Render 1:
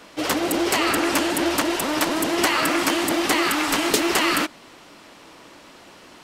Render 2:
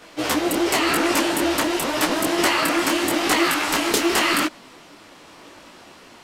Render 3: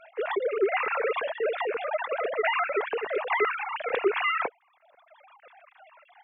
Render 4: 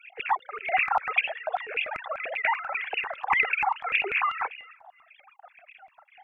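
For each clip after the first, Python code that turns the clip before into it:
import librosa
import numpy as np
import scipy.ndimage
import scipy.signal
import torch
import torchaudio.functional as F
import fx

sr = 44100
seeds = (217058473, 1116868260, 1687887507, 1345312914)

y1 = fx.detune_double(x, sr, cents=31)
y1 = F.gain(torch.from_numpy(y1), 4.5).numpy()
y2 = fx.sine_speech(y1, sr)
y2 = fx.dereverb_blind(y2, sr, rt60_s=1.2)
y2 = fx.notch(y2, sr, hz=3000.0, q=5.4)
y2 = F.gain(torch.from_numpy(y2), -6.0).numpy()
y3 = fx.echo_feedback(y2, sr, ms=341, feedback_pct=25, wet_db=-22.5)
y3 = fx.filter_lfo_highpass(y3, sr, shape='square', hz=5.1, low_hz=780.0, high_hz=2500.0, q=7.3)
y3 = fx.phaser_stages(y3, sr, stages=4, low_hz=390.0, high_hz=1100.0, hz=1.8, feedback_pct=15)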